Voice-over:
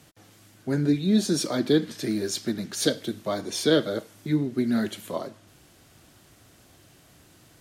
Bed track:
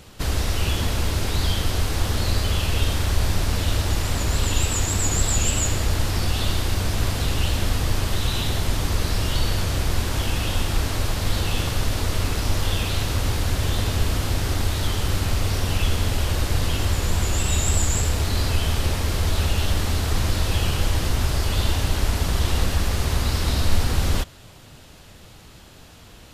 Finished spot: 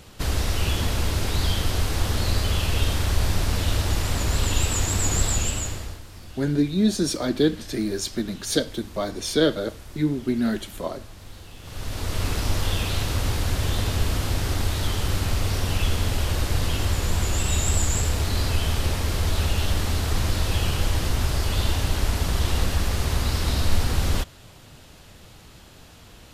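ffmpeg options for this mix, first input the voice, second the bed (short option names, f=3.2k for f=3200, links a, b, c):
-filter_complex "[0:a]adelay=5700,volume=1dB[a];[1:a]volume=17.5dB,afade=t=out:st=5.22:d=0.79:silence=0.112202,afade=t=in:st=11.61:d=0.68:silence=0.11885[b];[a][b]amix=inputs=2:normalize=0"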